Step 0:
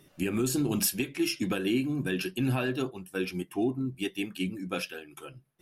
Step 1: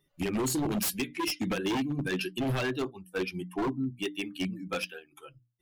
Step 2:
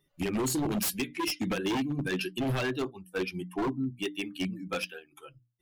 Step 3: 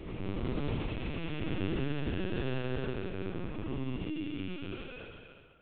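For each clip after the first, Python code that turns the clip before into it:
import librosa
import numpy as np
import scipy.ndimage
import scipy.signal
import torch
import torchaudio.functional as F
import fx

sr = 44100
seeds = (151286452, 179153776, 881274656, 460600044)

y1 = fx.bin_expand(x, sr, power=1.5)
y1 = fx.hum_notches(y1, sr, base_hz=60, count=5)
y1 = 10.0 ** (-28.0 / 20.0) * (np.abs((y1 / 10.0 ** (-28.0 / 20.0) + 3.0) % 4.0 - 2.0) - 1.0)
y1 = y1 * 10.0 ** (4.0 / 20.0)
y2 = y1
y3 = fx.spec_blur(y2, sr, span_ms=665.0)
y3 = fx.echo_feedback(y3, sr, ms=69, feedback_pct=53, wet_db=-4.0)
y3 = fx.lpc_vocoder(y3, sr, seeds[0], excitation='pitch_kept', order=10)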